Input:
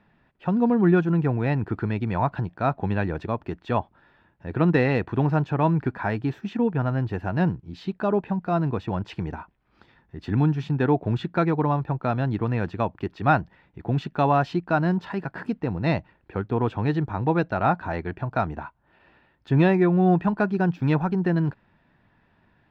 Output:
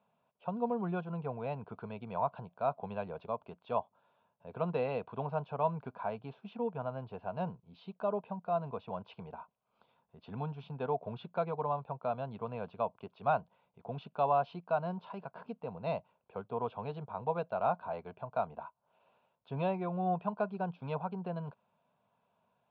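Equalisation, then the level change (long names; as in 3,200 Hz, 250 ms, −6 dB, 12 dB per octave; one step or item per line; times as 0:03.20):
loudspeaker in its box 350–3,600 Hz, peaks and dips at 380 Hz −4 dB, 550 Hz −3 dB, 820 Hz −9 dB, 1,300 Hz −5 dB
high-shelf EQ 2,100 Hz −9.5 dB
phaser with its sweep stopped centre 760 Hz, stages 4
0.0 dB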